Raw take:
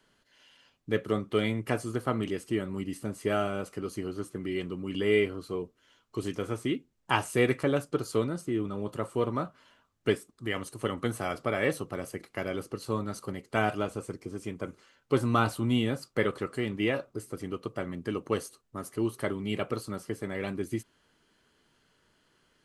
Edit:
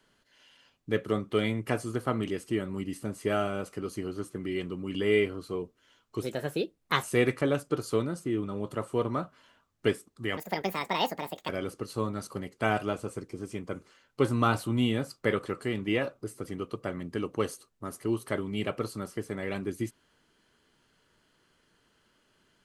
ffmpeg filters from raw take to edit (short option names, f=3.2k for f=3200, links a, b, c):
-filter_complex "[0:a]asplit=5[a][b][c][d][e];[a]atrim=end=6.224[f];[b]atrim=start=6.22:end=7.25,asetpts=PTS-STARTPTS,asetrate=56007,aresample=44100,atrim=end_sample=35766,asetpts=PTS-STARTPTS[g];[c]atrim=start=7.246:end=10.594[h];[d]atrim=start=10.59:end=12.41,asetpts=PTS-STARTPTS,asetrate=71883,aresample=44100,atrim=end_sample=49240,asetpts=PTS-STARTPTS[i];[e]atrim=start=12.406[j];[f][g]acrossfade=d=0.004:c1=hsin:c2=hsin[k];[k][h]acrossfade=d=0.004:c1=hsin:c2=hsin[l];[l][i]acrossfade=d=0.004:c1=hsin:c2=hsin[m];[m][j]acrossfade=d=0.004:c1=hsin:c2=hsin"